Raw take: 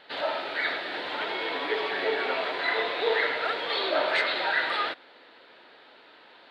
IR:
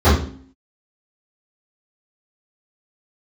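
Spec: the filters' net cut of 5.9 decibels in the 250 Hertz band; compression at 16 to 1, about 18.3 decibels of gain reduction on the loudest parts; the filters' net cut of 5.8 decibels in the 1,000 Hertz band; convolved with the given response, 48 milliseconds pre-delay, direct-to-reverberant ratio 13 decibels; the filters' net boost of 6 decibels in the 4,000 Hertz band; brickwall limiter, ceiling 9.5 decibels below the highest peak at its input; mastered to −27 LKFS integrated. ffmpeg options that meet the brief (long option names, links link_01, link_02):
-filter_complex "[0:a]equalizer=frequency=250:width_type=o:gain=-8.5,equalizer=frequency=1000:width_type=o:gain=-8,equalizer=frequency=4000:width_type=o:gain=7.5,acompressor=threshold=-40dB:ratio=16,alimiter=level_in=15.5dB:limit=-24dB:level=0:latency=1,volume=-15.5dB,asplit=2[link_01][link_02];[1:a]atrim=start_sample=2205,adelay=48[link_03];[link_02][link_03]afir=irnorm=-1:irlink=0,volume=-38.5dB[link_04];[link_01][link_04]amix=inputs=2:normalize=0,volume=20dB"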